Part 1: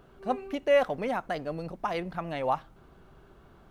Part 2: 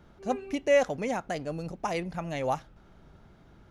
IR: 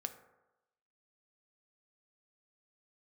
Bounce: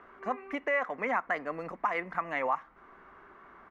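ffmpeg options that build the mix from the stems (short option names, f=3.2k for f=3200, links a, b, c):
-filter_complex "[0:a]highpass=f=210:w=0.5412,highpass=f=210:w=1.3066,alimiter=limit=-24dB:level=0:latency=1:release=424,lowpass=f=2k:t=q:w=5,volume=-1.5dB[a];[1:a]equalizer=f=170:w=1.4:g=-14.5,acompressor=threshold=-36dB:ratio=6,volume=-1,adelay=4.7,volume=-12.5dB[b];[a][b]amix=inputs=2:normalize=0,equalizer=f=1.1k:t=o:w=0.51:g=11"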